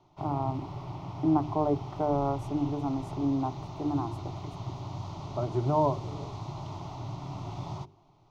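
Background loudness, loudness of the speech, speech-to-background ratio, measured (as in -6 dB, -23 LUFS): -39.5 LUFS, -31.0 LUFS, 8.5 dB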